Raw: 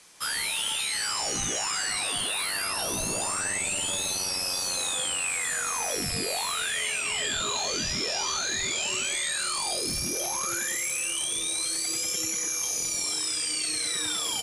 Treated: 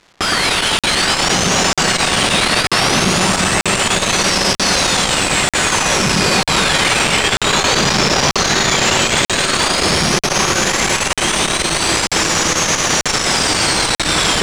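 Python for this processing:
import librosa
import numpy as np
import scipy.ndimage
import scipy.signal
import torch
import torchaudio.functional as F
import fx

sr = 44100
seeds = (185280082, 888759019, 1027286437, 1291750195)

p1 = scipy.signal.sosfilt(scipy.signal.butter(2, 120.0, 'highpass', fs=sr, output='sos'), x)
p2 = fx.bass_treble(p1, sr, bass_db=12, treble_db=12)
p3 = p2 + 0.45 * np.pad(p2, (int(5.3 * sr / 1000.0), 0))[:len(p2)]
p4 = fx.rider(p3, sr, range_db=10, speed_s=2.0)
p5 = p3 + F.gain(torch.from_numpy(p4), 2.0).numpy()
p6 = fx.schmitt(p5, sr, flips_db=-17.0)
p7 = fx.dmg_crackle(p6, sr, seeds[0], per_s=510.0, level_db=-35.0)
p8 = np.clip(p7, -10.0 ** (-14.0 / 20.0), 10.0 ** (-14.0 / 20.0))
p9 = fx.air_absorb(p8, sr, metres=90.0)
p10 = p9 + fx.echo_alternate(p9, sr, ms=113, hz=1900.0, feedback_pct=83, wet_db=-3, dry=0)
p11 = fx.buffer_crackle(p10, sr, first_s=0.79, period_s=0.94, block=2048, kind='zero')
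p12 = fx.transformer_sat(p11, sr, knee_hz=370.0)
y = F.gain(torch.from_numpy(p12), 2.5).numpy()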